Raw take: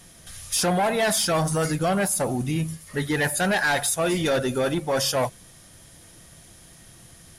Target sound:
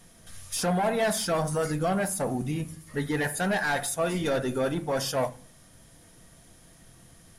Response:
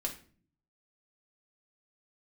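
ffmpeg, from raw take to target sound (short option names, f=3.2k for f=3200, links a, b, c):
-filter_complex "[0:a]asplit=2[a][b];[1:a]atrim=start_sample=2205,lowpass=2.2k[c];[b][c]afir=irnorm=-1:irlink=0,volume=-5.5dB[d];[a][d]amix=inputs=2:normalize=0,volume=-7dB"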